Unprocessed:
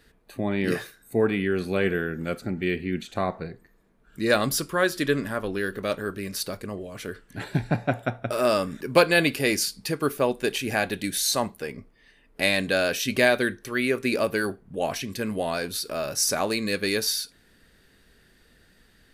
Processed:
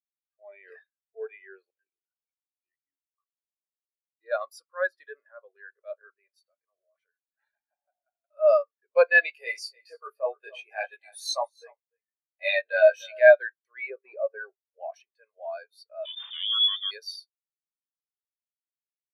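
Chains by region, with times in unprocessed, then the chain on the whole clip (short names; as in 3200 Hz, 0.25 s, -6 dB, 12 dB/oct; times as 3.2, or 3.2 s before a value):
1.7–4.21 AM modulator 54 Hz, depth 65% + vowel sweep i-u 1.8 Hz
6.39–8.37 HPF 510 Hz 6 dB/oct + compressor 5:1, threshold -36 dBFS
9.21–13.2 doubler 19 ms -3 dB + echo 0.295 s -12 dB
13.9–14.8 CVSD 32 kbps + tilt -2.5 dB/oct
16.05–16.91 minimum comb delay 0.45 ms + inverted band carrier 3600 Hz + fast leveller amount 50%
whole clip: HPF 570 Hz 24 dB/oct; transient shaper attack -7 dB, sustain -2 dB; spectral expander 2.5:1; gain +5.5 dB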